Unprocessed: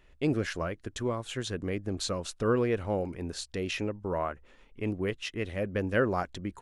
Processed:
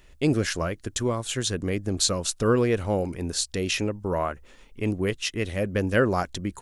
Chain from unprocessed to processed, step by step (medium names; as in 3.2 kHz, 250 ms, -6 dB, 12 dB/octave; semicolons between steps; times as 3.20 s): tone controls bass +2 dB, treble +10 dB; trim +4.5 dB